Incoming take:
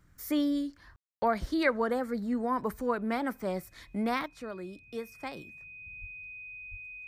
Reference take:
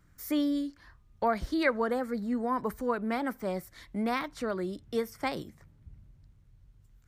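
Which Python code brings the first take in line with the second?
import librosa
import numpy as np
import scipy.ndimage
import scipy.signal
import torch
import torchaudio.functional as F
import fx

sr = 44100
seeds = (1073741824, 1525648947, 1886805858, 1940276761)

y = fx.notch(x, sr, hz=2500.0, q=30.0)
y = fx.fix_deplosive(y, sr, at_s=(6.0, 6.7))
y = fx.fix_ambience(y, sr, seeds[0], print_start_s=4.73, print_end_s=5.23, start_s=0.96, end_s=1.22)
y = fx.fix_level(y, sr, at_s=4.26, step_db=7.5)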